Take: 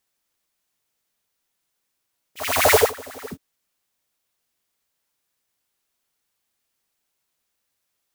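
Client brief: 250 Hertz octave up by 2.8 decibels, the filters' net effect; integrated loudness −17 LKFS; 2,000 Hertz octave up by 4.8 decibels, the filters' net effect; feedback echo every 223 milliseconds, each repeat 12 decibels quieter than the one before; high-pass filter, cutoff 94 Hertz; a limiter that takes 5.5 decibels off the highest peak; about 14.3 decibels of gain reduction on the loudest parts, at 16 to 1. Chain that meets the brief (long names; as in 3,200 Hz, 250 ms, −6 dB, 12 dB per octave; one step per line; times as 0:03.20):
high-pass filter 94 Hz
parametric band 250 Hz +3.5 dB
parametric band 2,000 Hz +5.5 dB
downward compressor 16 to 1, threshold −24 dBFS
brickwall limiter −20 dBFS
repeating echo 223 ms, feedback 25%, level −12 dB
level +15 dB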